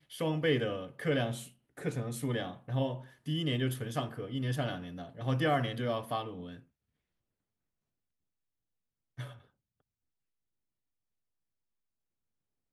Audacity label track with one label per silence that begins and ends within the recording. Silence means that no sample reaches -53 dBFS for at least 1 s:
6.620000	9.180000	silence